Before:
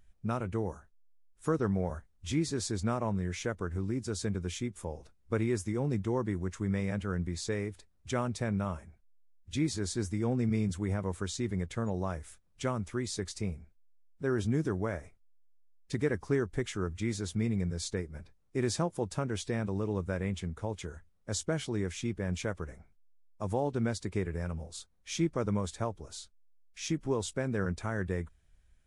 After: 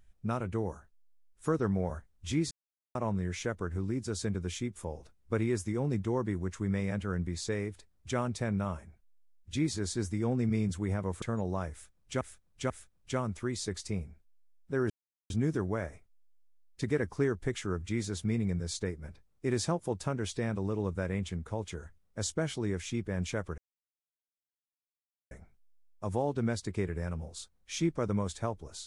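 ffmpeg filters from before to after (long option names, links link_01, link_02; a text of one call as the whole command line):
ffmpeg -i in.wav -filter_complex "[0:a]asplit=8[link_01][link_02][link_03][link_04][link_05][link_06][link_07][link_08];[link_01]atrim=end=2.51,asetpts=PTS-STARTPTS,afade=type=out:start_time=2.506:duration=0.004:curve=hsin[link_09];[link_02]atrim=start=2.51:end=2.95,asetpts=PTS-STARTPTS,volume=0[link_10];[link_03]atrim=start=2.95:end=11.222,asetpts=PTS-STARTPTS,afade=type=in:duration=0.004:curve=hsin[link_11];[link_04]atrim=start=11.708:end=12.702[link_12];[link_05]atrim=start=12.208:end=12.702[link_13];[link_06]atrim=start=12.208:end=14.41,asetpts=PTS-STARTPTS,afade=type=out:start_time=2.198:duration=0.004:curve=hsin,apad=pad_dur=0.4[link_14];[link_07]atrim=start=14.41:end=22.69,asetpts=PTS-STARTPTS,afade=type=in:duration=0.004:curve=hsin,afade=type=out:start_time=8.276:duration=0.004:curve=hsin,apad=pad_dur=1.73[link_15];[link_08]atrim=start=22.69,asetpts=PTS-STARTPTS,afade=type=in:duration=0.004:curve=hsin[link_16];[link_09][link_10][link_11]concat=n=3:v=0:a=1[link_17];[link_17][link_12]acrossfade=duration=0.004:curve1=hsin:curve2=hsin[link_18];[link_18][link_13]acrossfade=duration=0.004:curve1=hsin:curve2=hsin[link_19];[link_14][link_15][link_16]concat=n=3:v=0:a=1[link_20];[link_19][link_20]acrossfade=duration=0.004:curve1=hsin:curve2=hsin" out.wav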